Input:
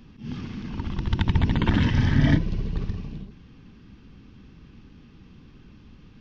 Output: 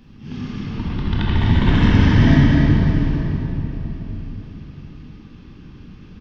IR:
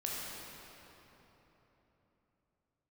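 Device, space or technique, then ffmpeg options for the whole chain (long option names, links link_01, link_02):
cave: -filter_complex "[0:a]asettb=1/sr,asplit=3[link_01][link_02][link_03];[link_01]atrim=end=0.654[link_04];[link_02]atrim=start=0.65:end=1.36,asetpts=PTS-STARTPTS,afade=type=in:duration=0.004:curve=qsin,afade=type=out:start_time=0.706:duration=0.004:curve=qsin,lowpass=frequency=5000:width=0.5412,lowpass=frequency=5000:width=1.3066[link_05];[link_03]atrim=start=1.356[link_06];[link_04][link_05]acrossfade=duration=0.004:curve1=hsin:curve2=qsin[link_07];[link_07][link_06]acrossfade=duration=0.004:curve1=qsin:curve2=hsin,aecho=1:1:252:0.398[link_08];[1:a]atrim=start_sample=2205[link_09];[link_08][link_09]afir=irnorm=-1:irlink=0,volume=3.5dB"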